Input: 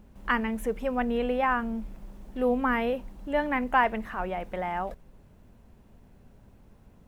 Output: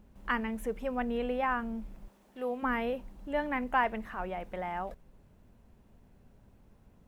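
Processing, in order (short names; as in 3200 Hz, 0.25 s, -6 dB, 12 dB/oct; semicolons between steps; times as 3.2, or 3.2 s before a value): 2.08–2.63 HPF 560 Hz 6 dB/oct; gain -5 dB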